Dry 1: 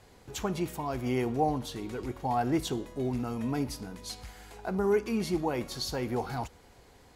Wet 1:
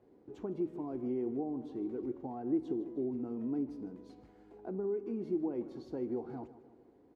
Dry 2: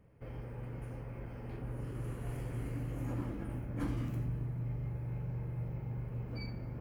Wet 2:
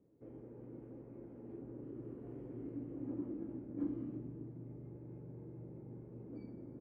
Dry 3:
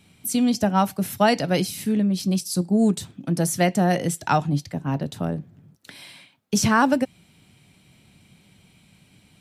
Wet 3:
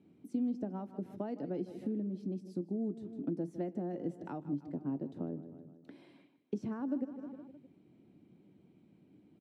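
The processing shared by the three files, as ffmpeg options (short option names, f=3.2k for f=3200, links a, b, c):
-af "aecho=1:1:155|310|465|620:0.141|0.0706|0.0353|0.0177,acompressor=threshold=-30dB:ratio=5,bandpass=f=320:t=q:w=3:csg=0,volume=3.5dB"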